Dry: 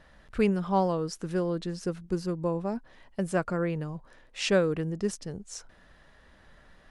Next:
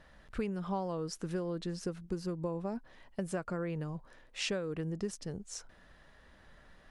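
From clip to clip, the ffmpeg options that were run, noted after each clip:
-af "acompressor=threshold=-29dB:ratio=10,volume=-2.5dB"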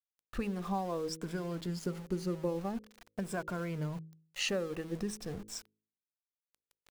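-af "afftfilt=real='re*pow(10,10/40*sin(2*PI*(1.7*log(max(b,1)*sr/1024/100)/log(2)-(-0.46)*(pts-256)/sr)))':imag='im*pow(10,10/40*sin(2*PI*(1.7*log(max(b,1)*sr/1024/100)/log(2)-(-0.46)*(pts-256)/sr)))':win_size=1024:overlap=0.75,aeval=exprs='val(0)*gte(abs(val(0)),0.00473)':c=same,bandreject=f=53.32:t=h:w=4,bandreject=f=106.64:t=h:w=4,bandreject=f=159.96:t=h:w=4,bandreject=f=213.28:t=h:w=4,bandreject=f=266.6:t=h:w=4,bandreject=f=319.92:t=h:w=4,bandreject=f=373.24:t=h:w=4,bandreject=f=426.56:t=h:w=4,bandreject=f=479.88:t=h:w=4,bandreject=f=533.2:t=h:w=4"

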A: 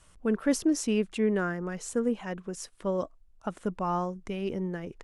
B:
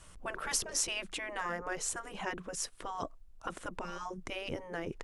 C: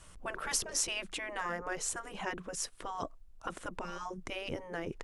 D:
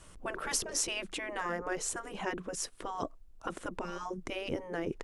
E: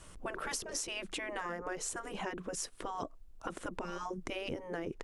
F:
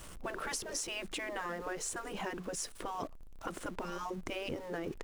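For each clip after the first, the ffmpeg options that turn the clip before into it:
-af "afftfilt=real='re*lt(hypot(re,im),0.0891)':imag='im*lt(hypot(re,im),0.0891)':win_size=1024:overlap=0.75,volume=4dB"
-af anull
-af "equalizer=f=330:t=o:w=1.5:g=5.5"
-af "acompressor=threshold=-36dB:ratio=6,volume=1dB"
-af "aeval=exprs='val(0)+0.5*0.00422*sgn(val(0))':c=same,volume=-1dB"

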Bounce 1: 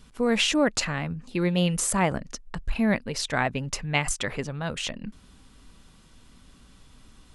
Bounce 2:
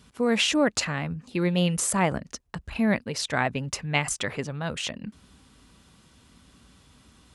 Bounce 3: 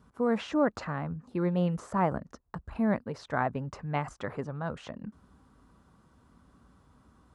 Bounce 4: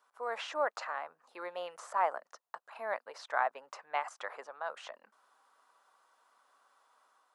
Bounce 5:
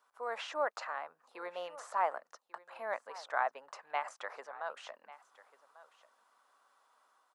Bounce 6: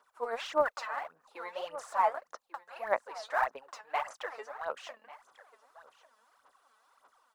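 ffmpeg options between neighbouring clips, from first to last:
-af "highpass=f=54:w=0.5412,highpass=f=54:w=1.3066"
-filter_complex "[0:a]acrossover=split=5700[a][b];[b]acompressor=threshold=-48dB:ratio=4:attack=1:release=60[c];[a][c]amix=inputs=2:normalize=0,highshelf=f=1.8k:t=q:w=1.5:g=-12,volume=-4dB"
-af "highpass=f=630:w=0.5412,highpass=f=630:w=1.3066,dynaudnorm=f=110:g=5:m=3dB,volume=-3dB"
-af "aecho=1:1:1143:0.119,volume=-1.5dB"
-af "aphaser=in_gain=1:out_gain=1:delay=4.7:decay=0.72:speed=1.7:type=sinusoidal"

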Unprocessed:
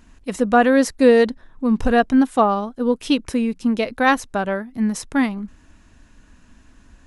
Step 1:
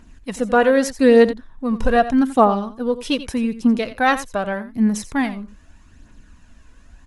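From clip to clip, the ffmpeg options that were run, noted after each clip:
-af "aphaser=in_gain=1:out_gain=1:delay=2.1:decay=0.43:speed=0.82:type=triangular,aecho=1:1:86:0.2,volume=-1dB"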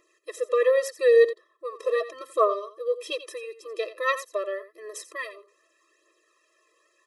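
-af "afftfilt=real='re*eq(mod(floor(b*sr/1024/340),2),1)':imag='im*eq(mod(floor(b*sr/1024/340),2),1)':win_size=1024:overlap=0.75,volume=-4dB"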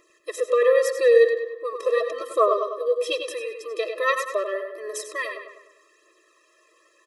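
-filter_complex "[0:a]asplit=2[a][b];[b]acompressor=threshold=-29dB:ratio=6,volume=-1.5dB[c];[a][c]amix=inputs=2:normalize=0,asplit=2[d][e];[e]adelay=100,lowpass=f=3.4k:p=1,volume=-6dB,asplit=2[f][g];[g]adelay=100,lowpass=f=3.4k:p=1,volume=0.53,asplit=2[h][i];[i]adelay=100,lowpass=f=3.4k:p=1,volume=0.53,asplit=2[j][k];[k]adelay=100,lowpass=f=3.4k:p=1,volume=0.53,asplit=2[l][m];[m]adelay=100,lowpass=f=3.4k:p=1,volume=0.53,asplit=2[n][o];[o]adelay=100,lowpass=f=3.4k:p=1,volume=0.53,asplit=2[p][q];[q]adelay=100,lowpass=f=3.4k:p=1,volume=0.53[r];[d][f][h][j][l][n][p][r]amix=inputs=8:normalize=0"

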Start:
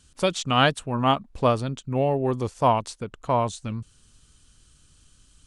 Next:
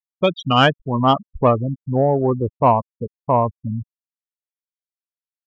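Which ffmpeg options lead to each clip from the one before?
-af "afftfilt=real='re*gte(hypot(re,im),0.1)':imag='im*gte(hypot(re,im),0.1)':win_size=1024:overlap=0.75,acontrast=61"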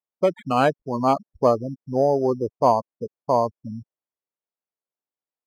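-af "acrusher=samples=8:mix=1:aa=0.000001,bandpass=f=520:t=q:w=0.75:csg=0,volume=-1dB"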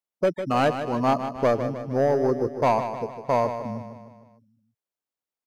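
-filter_complex "[0:a]asoftclip=type=tanh:threshold=-13.5dB,asplit=2[a][b];[b]aecho=0:1:153|306|459|612|765|918:0.335|0.178|0.0941|0.0499|0.0264|0.014[c];[a][c]amix=inputs=2:normalize=0"

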